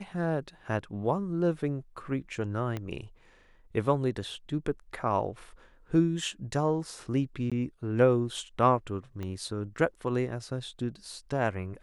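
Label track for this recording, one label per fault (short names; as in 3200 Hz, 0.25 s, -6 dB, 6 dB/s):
2.770000	2.770000	pop -21 dBFS
7.500000	7.520000	gap 16 ms
9.230000	9.230000	pop -25 dBFS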